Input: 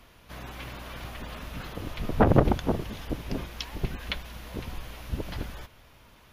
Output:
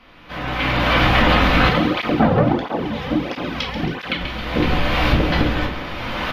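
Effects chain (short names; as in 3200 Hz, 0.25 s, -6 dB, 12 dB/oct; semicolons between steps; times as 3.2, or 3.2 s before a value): recorder AGC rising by 20 dB/s; tilt +2.5 dB/oct; overloaded stage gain 8.5 dB; air absorption 320 m; frequency-shifting echo 0.136 s, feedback 60%, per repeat +72 Hz, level -11.5 dB; shoebox room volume 320 m³, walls furnished, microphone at 2 m; 1.69–4.21 tape flanging out of phase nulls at 1.5 Hz, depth 3.5 ms; gain +6.5 dB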